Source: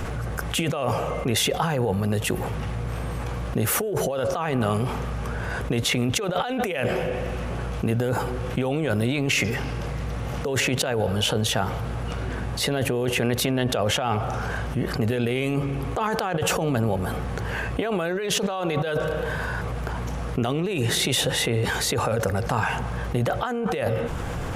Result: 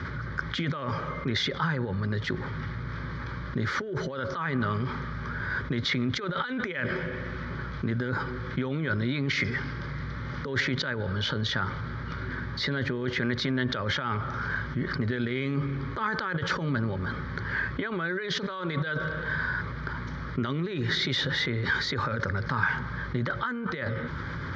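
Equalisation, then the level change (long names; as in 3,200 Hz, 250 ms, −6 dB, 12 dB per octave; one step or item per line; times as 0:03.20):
loudspeaker in its box 110–4,100 Hz, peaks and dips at 120 Hz −6 dB, 200 Hz −9 dB, 310 Hz −6 dB, 470 Hz −10 dB, 1,100 Hz −3 dB, 3,700 Hz −3 dB
phaser with its sweep stopped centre 2,700 Hz, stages 6
+3.0 dB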